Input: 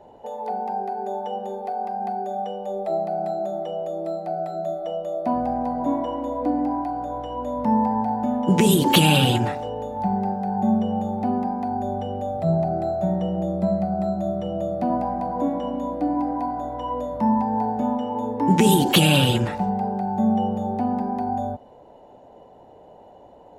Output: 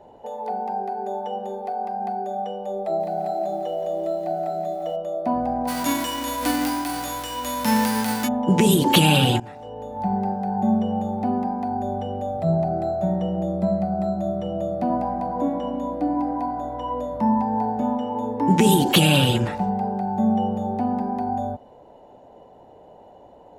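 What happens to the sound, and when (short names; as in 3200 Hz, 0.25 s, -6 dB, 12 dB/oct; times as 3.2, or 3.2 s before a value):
2.83–4.96 lo-fi delay 0.172 s, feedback 55%, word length 9-bit, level -7.5 dB
5.67–8.27 spectral whitening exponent 0.3
9.4–10.14 fade in, from -20 dB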